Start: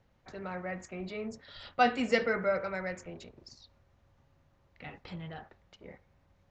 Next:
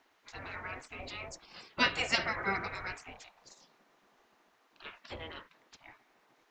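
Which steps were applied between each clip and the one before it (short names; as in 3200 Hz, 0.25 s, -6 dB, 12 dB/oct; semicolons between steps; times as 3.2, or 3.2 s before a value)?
spectral gate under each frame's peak -15 dB weak; gain +8 dB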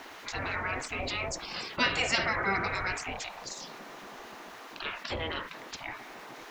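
fast leveller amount 50%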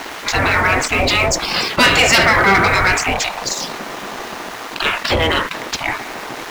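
sample leveller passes 3; gain +8 dB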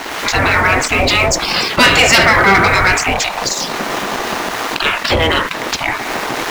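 recorder AGC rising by 29 dB/s; gain +2.5 dB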